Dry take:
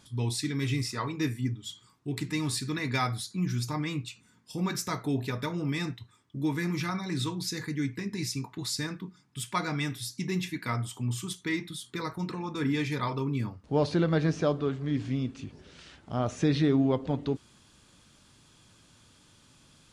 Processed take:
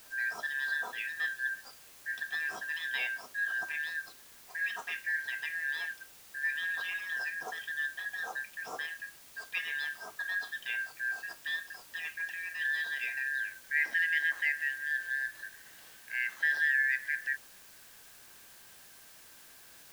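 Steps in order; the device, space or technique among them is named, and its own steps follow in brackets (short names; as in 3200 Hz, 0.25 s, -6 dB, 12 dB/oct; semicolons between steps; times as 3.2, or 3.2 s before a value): split-band scrambled radio (four-band scrambler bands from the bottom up 4123; BPF 400–3000 Hz; white noise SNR 19 dB); gain -4 dB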